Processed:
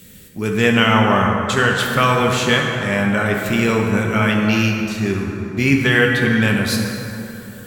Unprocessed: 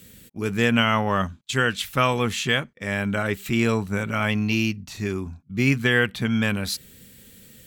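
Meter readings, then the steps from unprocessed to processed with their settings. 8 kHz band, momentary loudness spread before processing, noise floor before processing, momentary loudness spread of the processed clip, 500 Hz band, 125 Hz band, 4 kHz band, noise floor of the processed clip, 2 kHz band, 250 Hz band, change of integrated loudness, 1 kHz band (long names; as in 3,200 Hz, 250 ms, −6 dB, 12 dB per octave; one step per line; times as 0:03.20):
+5.5 dB, 10 LU, −52 dBFS, 9 LU, +7.5 dB, +6.5 dB, +5.5 dB, −37 dBFS, +7.0 dB, +7.0 dB, +6.5 dB, +7.5 dB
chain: dense smooth reverb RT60 3.4 s, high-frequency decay 0.45×, DRR 0 dB
level +4 dB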